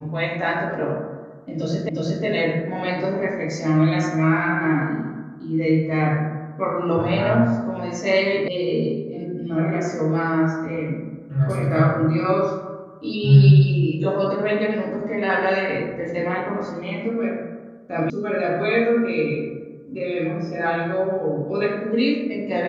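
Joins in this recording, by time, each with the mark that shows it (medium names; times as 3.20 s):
1.89 s: repeat of the last 0.36 s
8.48 s: sound stops dead
18.10 s: sound stops dead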